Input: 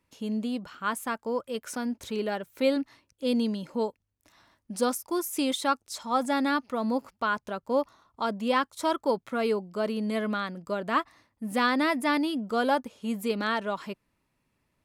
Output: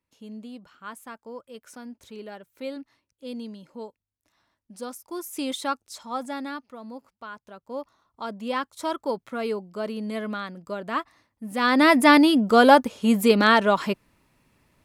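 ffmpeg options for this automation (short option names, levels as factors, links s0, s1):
-af "volume=12.6,afade=t=in:st=4.89:d=0.7:silence=0.375837,afade=t=out:st=5.59:d=1.21:silence=0.281838,afade=t=in:st=7.41:d=1.39:silence=0.298538,afade=t=in:st=11.57:d=0.4:silence=0.237137"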